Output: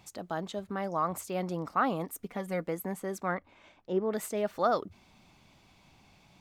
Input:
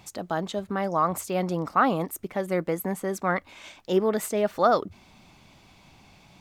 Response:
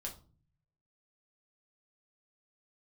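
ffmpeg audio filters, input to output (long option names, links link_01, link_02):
-filter_complex "[0:a]asettb=1/sr,asplit=3[link_01][link_02][link_03];[link_01]atrim=end=2.104[link_04];[link_02]atrim=start=2.1:end=2.67,asetpts=PTS-STARTPTS,afade=type=in:duration=0.004:curve=qsin,afade=type=out:start_time=0.566:duration=0.004:curve=qsin,aecho=1:1:4.2:0.55,atrim=end_sample=25137[link_05];[link_03]atrim=start=2.666[link_06];[link_04][link_05]acrossfade=duration=0.004:curve1=hsin:curve2=qsin[link_07];[link_07][link_06]acrossfade=duration=0.004:curve1=qsin:curve2=hsin,asplit=3[link_08][link_09][link_10];[link_08]afade=type=out:start_time=3.34:duration=0.02[link_11];[link_09]lowpass=frequency=1100:poles=1,afade=type=in:start_time=3.34:duration=0.02,afade=type=out:start_time=4.1:duration=0.02[link_12];[link_10]afade=type=in:start_time=4.1:duration=0.02[link_13];[link_11][link_12][link_13]amix=inputs=3:normalize=0,volume=-6.5dB"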